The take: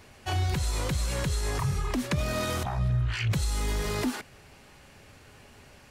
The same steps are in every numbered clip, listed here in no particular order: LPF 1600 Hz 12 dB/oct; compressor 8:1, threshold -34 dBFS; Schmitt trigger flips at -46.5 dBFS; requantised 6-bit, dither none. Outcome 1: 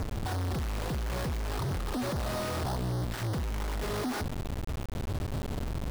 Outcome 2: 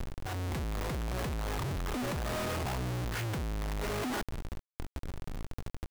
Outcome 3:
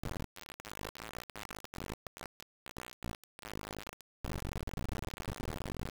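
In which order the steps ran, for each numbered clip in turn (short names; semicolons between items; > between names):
Schmitt trigger > compressor > LPF > requantised; LPF > Schmitt trigger > requantised > compressor; compressor > Schmitt trigger > LPF > requantised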